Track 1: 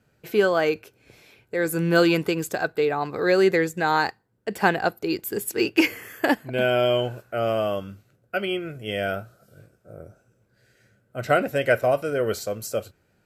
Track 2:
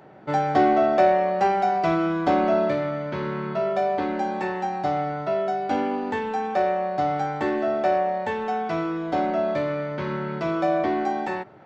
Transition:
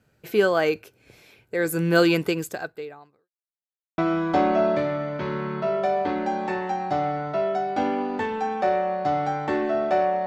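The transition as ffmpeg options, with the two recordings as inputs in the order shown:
-filter_complex "[0:a]apad=whole_dur=10.26,atrim=end=10.26,asplit=2[a][b];[a]atrim=end=3.29,asetpts=PTS-STARTPTS,afade=t=out:st=2.32:d=0.97:c=qua[c];[b]atrim=start=3.29:end=3.98,asetpts=PTS-STARTPTS,volume=0[d];[1:a]atrim=start=1.91:end=8.19,asetpts=PTS-STARTPTS,afade=t=in:d=0.004:c=hsin[e];[c][d][e]concat=n=3:v=0:a=1"

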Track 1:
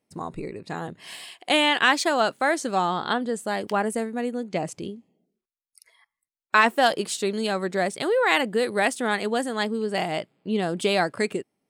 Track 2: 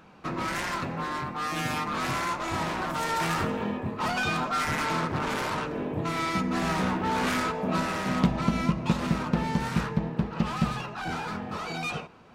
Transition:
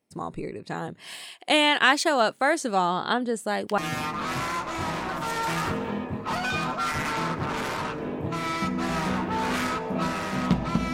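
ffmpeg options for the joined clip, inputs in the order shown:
-filter_complex "[0:a]apad=whole_dur=10.93,atrim=end=10.93,atrim=end=3.782[a];[1:a]atrim=start=1.508:end=8.66[b];[a][b]acrossfade=d=0.004:c1=hsin:c2=hsin"

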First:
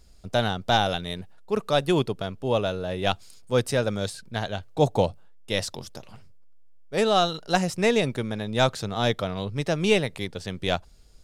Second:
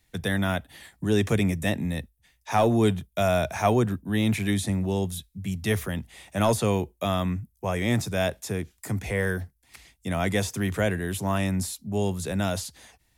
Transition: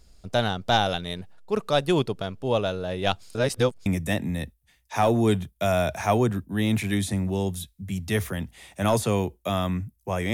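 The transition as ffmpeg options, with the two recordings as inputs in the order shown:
-filter_complex "[0:a]apad=whole_dur=10.33,atrim=end=10.33,asplit=2[a][b];[a]atrim=end=3.352[c];[b]atrim=start=3.348:end=3.862,asetpts=PTS-STARTPTS,areverse[d];[1:a]atrim=start=1.418:end=7.89[e];[c][d]acrossfade=d=0.004:c1=hsin:c2=hsin[f];[f][e]acrossfade=d=0.004:c1=hsin:c2=hsin"

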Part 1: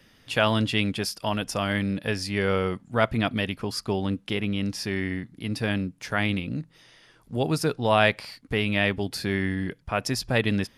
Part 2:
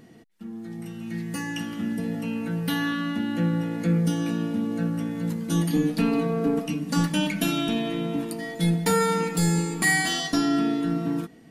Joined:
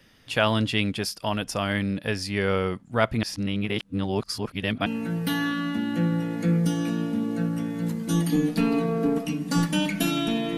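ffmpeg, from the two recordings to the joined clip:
-filter_complex "[0:a]apad=whole_dur=10.57,atrim=end=10.57,asplit=2[a][b];[a]atrim=end=3.232[c];[b]atrim=start=3.228:end=4.862,asetpts=PTS-STARTPTS,areverse[d];[1:a]atrim=start=2.268:end=7.98[e];[c][d]acrossfade=d=0.004:c1=hsin:c2=hsin[f];[f][e]acrossfade=d=0.004:c1=hsin:c2=hsin"

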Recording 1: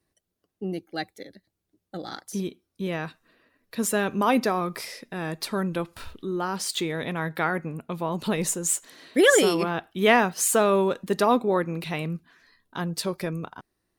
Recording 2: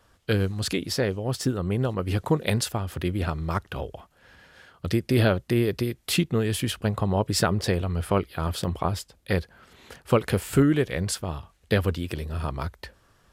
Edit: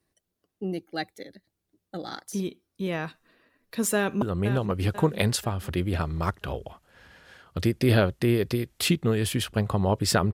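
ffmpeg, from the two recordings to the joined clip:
-filter_complex "[0:a]apad=whole_dur=10.33,atrim=end=10.33,atrim=end=4.222[a];[1:a]atrim=start=1.498:end=7.61[b];[a][b]acrossfade=d=0.004:c1=hsin:c2=hsin,asplit=2[c][d];[d]afade=t=in:st=3.96:d=0.01,afade=t=out:st=4.22:d=0.01,aecho=0:1:490|980|1470|1960|2450:0.354813|0.159666|0.0718497|0.0323324|0.0145496[e];[c][e]amix=inputs=2:normalize=0"

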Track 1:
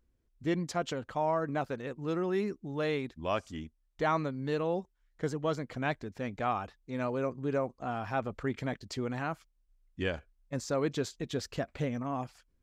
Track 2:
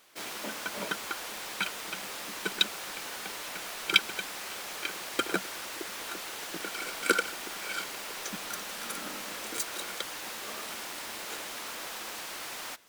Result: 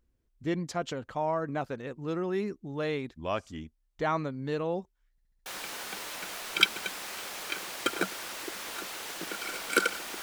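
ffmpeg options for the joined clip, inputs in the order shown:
-filter_complex "[0:a]apad=whole_dur=10.22,atrim=end=10.22,asplit=5[a][b][c][d][e];[a]atrim=end=5.182[f];[b]atrim=start=5.108:end=5.182[g];[c]atrim=start=5.108:end=5.182[h];[d]atrim=start=5.108:end=5.182[i];[e]atrim=start=5.108:end=5.182[j];[1:a]atrim=start=2.788:end=7.55[k];[f][g]acrossfade=d=0.004:c1=hsin:c2=hsin[l];[l][h]acrossfade=d=0.004:c1=hsin:c2=hsin[m];[m][i]acrossfade=d=0.004:c1=hsin:c2=hsin[n];[n][j]acrossfade=d=0.004:c1=hsin:c2=hsin[o];[o][k]acrossfade=d=0.004:c1=hsin:c2=hsin"

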